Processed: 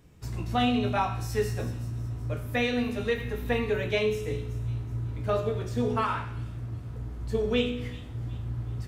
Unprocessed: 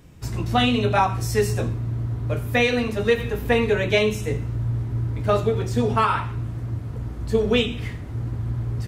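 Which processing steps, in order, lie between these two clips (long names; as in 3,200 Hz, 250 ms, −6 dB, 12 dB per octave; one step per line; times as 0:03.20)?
dynamic equaliser 8,300 Hz, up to −4 dB, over −43 dBFS, Q 1.1
tuned comb filter 61 Hz, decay 0.79 s, harmonics all, mix 70%
delay with a high-pass on its return 375 ms, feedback 41%, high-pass 4,100 Hz, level −12 dB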